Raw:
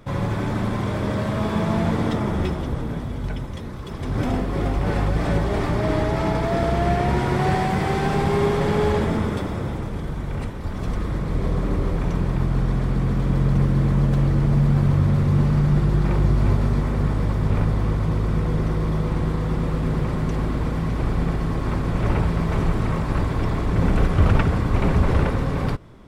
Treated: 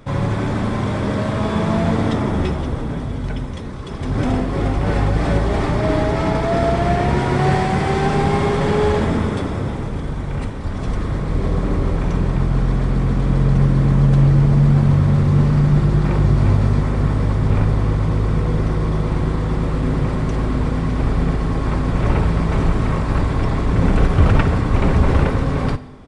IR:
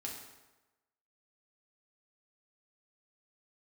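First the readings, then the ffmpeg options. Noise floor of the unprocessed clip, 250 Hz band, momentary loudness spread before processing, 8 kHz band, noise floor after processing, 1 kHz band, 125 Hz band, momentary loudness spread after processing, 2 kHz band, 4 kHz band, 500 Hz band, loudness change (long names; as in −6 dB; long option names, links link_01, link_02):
−29 dBFS, +3.5 dB, 9 LU, can't be measured, −25 dBFS, +3.5 dB, +4.0 dB, 9 LU, +3.5 dB, +3.5 dB, +3.5 dB, +4.0 dB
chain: -filter_complex "[0:a]asplit=2[link_01][link_02];[1:a]atrim=start_sample=2205[link_03];[link_02][link_03]afir=irnorm=-1:irlink=0,volume=-7dB[link_04];[link_01][link_04]amix=inputs=2:normalize=0,aresample=22050,aresample=44100,volume=1.5dB"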